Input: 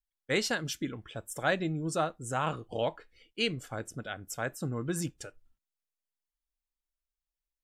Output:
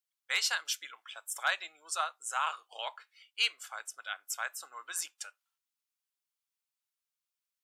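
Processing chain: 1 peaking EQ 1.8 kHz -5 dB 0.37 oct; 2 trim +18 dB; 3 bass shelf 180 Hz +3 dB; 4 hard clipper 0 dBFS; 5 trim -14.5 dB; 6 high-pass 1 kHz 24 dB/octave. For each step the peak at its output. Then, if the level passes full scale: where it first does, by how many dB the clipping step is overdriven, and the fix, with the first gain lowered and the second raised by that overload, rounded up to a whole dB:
-15.5 dBFS, +2.5 dBFS, +3.0 dBFS, 0.0 dBFS, -14.5 dBFS, -14.5 dBFS; step 2, 3.0 dB; step 2 +15 dB, step 5 -11.5 dB

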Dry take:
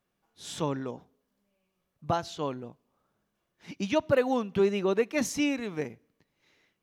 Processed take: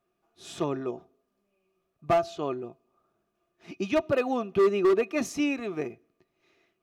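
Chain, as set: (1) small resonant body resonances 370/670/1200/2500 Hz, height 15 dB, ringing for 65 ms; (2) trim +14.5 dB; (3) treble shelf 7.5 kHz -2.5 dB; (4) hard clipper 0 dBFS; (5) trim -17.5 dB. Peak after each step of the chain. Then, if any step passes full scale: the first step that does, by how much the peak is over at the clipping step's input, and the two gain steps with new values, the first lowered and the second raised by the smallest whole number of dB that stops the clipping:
-5.5 dBFS, +9.0 dBFS, +9.0 dBFS, 0.0 dBFS, -17.5 dBFS; step 2, 9.0 dB; step 2 +5.5 dB, step 5 -8.5 dB

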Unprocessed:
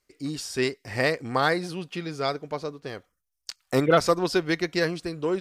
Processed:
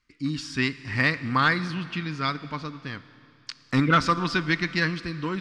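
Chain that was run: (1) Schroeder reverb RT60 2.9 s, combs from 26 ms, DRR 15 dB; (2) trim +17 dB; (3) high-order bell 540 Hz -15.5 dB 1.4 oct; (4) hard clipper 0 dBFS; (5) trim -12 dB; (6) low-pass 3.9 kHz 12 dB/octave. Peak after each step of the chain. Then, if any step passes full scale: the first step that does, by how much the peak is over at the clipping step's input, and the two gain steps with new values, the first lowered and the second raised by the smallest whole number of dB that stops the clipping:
-9.5 dBFS, +7.5 dBFS, +6.0 dBFS, 0.0 dBFS, -12.0 dBFS, -11.5 dBFS; step 2, 6.0 dB; step 2 +11 dB, step 5 -6 dB

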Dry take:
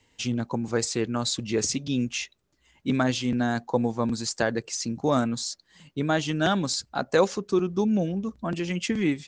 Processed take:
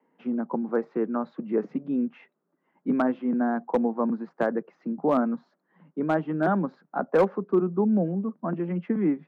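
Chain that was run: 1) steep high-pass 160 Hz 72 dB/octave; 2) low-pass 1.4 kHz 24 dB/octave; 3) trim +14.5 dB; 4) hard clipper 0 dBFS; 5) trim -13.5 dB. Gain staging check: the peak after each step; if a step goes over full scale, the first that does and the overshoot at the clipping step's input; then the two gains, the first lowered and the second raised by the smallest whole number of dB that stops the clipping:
-9.5 dBFS, -10.0 dBFS, +4.5 dBFS, 0.0 dBFS, -13.5 dBFS; step 3, 4.5 dB; step 3 +9.5 dB, step 5 -8.5 dB

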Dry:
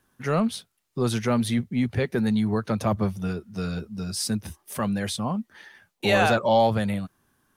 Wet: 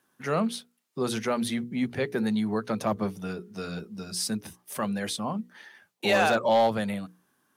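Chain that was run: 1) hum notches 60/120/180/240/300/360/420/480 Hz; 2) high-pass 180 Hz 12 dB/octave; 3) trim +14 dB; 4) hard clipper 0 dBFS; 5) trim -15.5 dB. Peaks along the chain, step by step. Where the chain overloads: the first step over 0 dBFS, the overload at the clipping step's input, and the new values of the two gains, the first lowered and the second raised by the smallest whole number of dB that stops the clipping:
-9.0 dBFS, -8.5 dBFS, +5.5 dBFS, 0.0 dBFS, -15.5 dBFS; step 3, 5.5 dB; step 3 +8 dB, step 5 -9.5 dB

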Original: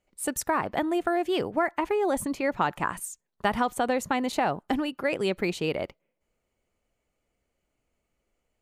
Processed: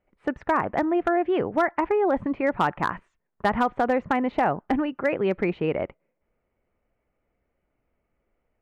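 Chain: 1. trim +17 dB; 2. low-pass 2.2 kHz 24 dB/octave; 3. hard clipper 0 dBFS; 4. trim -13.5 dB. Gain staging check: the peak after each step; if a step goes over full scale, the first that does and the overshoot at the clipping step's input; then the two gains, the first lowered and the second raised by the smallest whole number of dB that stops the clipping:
+5.5 dBFS, +5.5 dBFS, 0.0 dBFS, -13.5 dBFS; step 1, 5.5 dB; step 1 +11 dB, step 4 -7.5 dB

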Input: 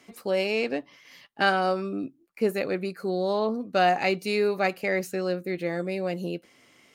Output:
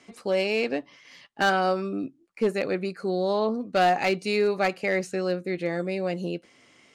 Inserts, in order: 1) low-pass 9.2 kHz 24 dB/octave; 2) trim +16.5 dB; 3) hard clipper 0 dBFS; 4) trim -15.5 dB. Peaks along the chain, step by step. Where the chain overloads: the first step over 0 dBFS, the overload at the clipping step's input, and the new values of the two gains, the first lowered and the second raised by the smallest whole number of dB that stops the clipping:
-9.5 dBFS, +7.0 dBFS, 0.0 dBFS, -15.5 dBFS; step 2, 7.0 dB; step 2 +9.5 dB, step 4 -8.5 dB

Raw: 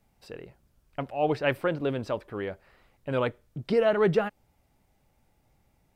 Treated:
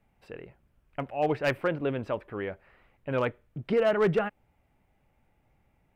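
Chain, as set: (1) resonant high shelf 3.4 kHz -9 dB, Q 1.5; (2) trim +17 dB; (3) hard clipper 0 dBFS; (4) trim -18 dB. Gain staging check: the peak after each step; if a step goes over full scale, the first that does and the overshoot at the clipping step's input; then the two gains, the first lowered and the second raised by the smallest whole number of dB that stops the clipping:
-10.0 dBFS, +7.0 dBFS, 0.0 dBFS, -18.0 dBFS; step 2, 7.0 dB; step 2 +10 dB, step 4 -11 dB

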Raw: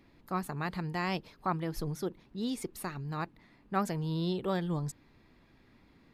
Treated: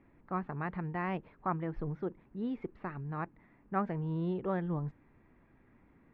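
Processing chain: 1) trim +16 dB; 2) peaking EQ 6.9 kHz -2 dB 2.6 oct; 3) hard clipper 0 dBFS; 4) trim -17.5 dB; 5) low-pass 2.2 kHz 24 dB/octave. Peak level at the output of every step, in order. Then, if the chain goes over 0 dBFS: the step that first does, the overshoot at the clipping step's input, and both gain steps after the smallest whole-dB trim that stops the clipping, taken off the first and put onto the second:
-2.0 dBFS, -2.5 dBFS, -2.5 dBFS, -20.0 dBFS, -20.0 dBFS; nothing clips

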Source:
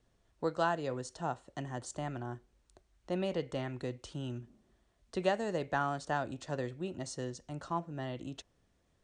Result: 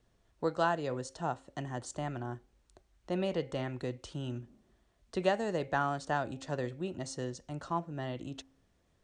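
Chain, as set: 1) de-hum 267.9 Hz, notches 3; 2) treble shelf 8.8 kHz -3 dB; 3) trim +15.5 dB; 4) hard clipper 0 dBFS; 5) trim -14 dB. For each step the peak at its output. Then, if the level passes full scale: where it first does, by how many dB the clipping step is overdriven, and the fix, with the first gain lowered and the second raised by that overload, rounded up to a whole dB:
-17.5 dBFS, -17.5 dBFS, -2.0 dBFS, -2.0 dBFS, -16.0 dBFS; nothing clips

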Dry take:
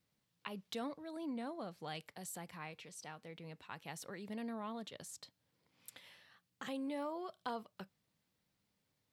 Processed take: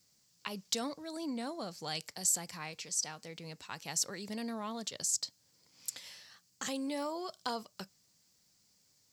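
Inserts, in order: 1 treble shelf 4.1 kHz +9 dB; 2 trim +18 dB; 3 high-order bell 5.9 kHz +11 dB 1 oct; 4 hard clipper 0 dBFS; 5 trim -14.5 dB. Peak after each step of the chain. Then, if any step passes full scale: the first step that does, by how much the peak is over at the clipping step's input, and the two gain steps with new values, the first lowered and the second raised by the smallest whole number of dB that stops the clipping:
-24.5 dBFS, -6.5 dBFS, -2.0 dBFS, -2.0 dBFS, -16.5 dBFS; nothing clips

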